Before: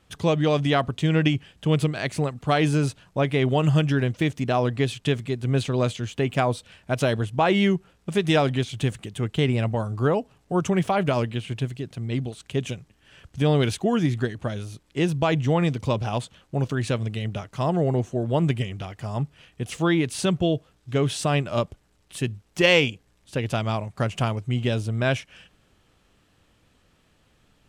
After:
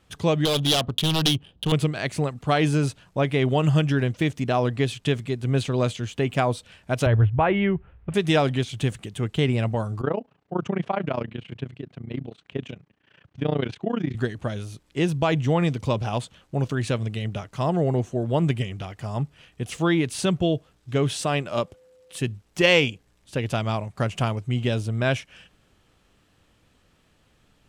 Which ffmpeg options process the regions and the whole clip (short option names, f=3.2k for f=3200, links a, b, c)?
-filter_complex "[0:a]asettb=1/sr,asplit=3[a][b][c];[a]atrim=end=0.454[d];[b]atrim=start=0.45:end=1.72,asetpts=PTS-STARTPTS,afade=t=in:d=0.004:c=qsin,afade=t=out:st=1.266:d=0.004:c=qsin,aeval=exprs='0.133*(abs(mod(val(0)/0.133+3,4)-2)-1)':c=same,highshelf=f=2.6k:t=q:w=3:g=7.5,adynamicsmooth=sensitivity=4.5:basefreq=950[e];[c]atrim=start=1.716[f];[d][e]acrossfade=d=0.004:c1=hsin:c2=qsin[g];[g][f]acrossfade=d=0.004:c1=qsin:c2=hsin,asettb=1/sr,asplit=3[h][i][j];[h]atrim=end=7.064[k];[i]atrim=start=7.06:end=8.14,asetpts=PTS-STARTPTS,afade=t=in:d=0.004:c=qsin,afade=t=out:st=1.076:d=0.004:c=qsin,lowpass=f=2.5k:w=0.5412,lowpass=f=2.5k:w=1.3066,lowshelf=f=130:t=q:w=1.5:g=13[l];[j]atrim=start=8.136[m];[k][l]acrossfade=d=0.004:c1=hsin:c2=qsin[n];[n][m]acrossfade=d=0.004:c1=qsin:c2=hsin,asettb=1/sr,asplit=3[o][p][q];[o]atrim=end=10.014[r];[p]atrim=start=10.01:end=14.15,asetpts=PTS-STARTPTS,afade=t=in:d=0.004:c=qsin,afade=t=out:st=4.136:d=0.004:c=qsin,tremolo=f=29:d=0.919,highpass=130,lowpass=2.9k[s];[q]atrim=start=14.146[t];[r][s]acrossfade=d=0.004:c1=hsin:c2=qsin[u];[u][t]acrossfade=d=0.004:c1=qsin:c2=hsin,asettb=1/sr,asplit=3[v][w][x];[v]atrim=end=21.224[y];[w]atrim=start=21.22:end=22.19,asetpts=PTS-STARTPTS,afade=t=in:d=0.004:c=qsin,afade=t=out:st=0.966:d=0.004:c=qsin,highpass=f=200:p=1,aeval=exprs='val(0)+0.00224*sin(2*PI*510*n/s)':c=same[z];[x]atrim=start=22.186[aa];[y][z]acrossfade=d=0.004:c1=hsin:c2=qsin[ab];[ab][aa]acrossfade=d=0.004:c1=qsin:c2=hsin"